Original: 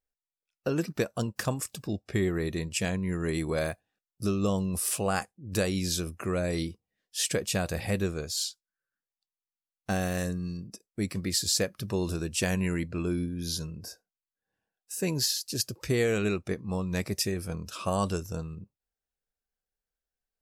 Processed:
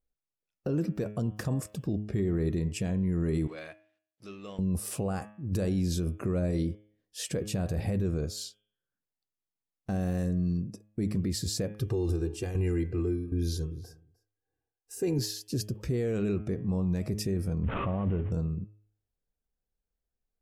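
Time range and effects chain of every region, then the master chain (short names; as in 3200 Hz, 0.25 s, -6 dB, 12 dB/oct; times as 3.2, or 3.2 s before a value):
3.47–4.59 G.711 law mismatch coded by mu + band-pass 2600 Hz, Q 1.5
11.78–15.19 tremolo saw down 1.3 Hz, depth 80% + comb 2.5 ms, depth 88% + echo 0.305 s -23.5 dB
17.63–18.32 CVSD 16 kbps + air absorption 77 m + backwards sustainer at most 33 dB/s
whole clip: tilt shelf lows +8.5 dB, about 710 Hz; de-hum 105 Hz, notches 33; limiter -21 dBFS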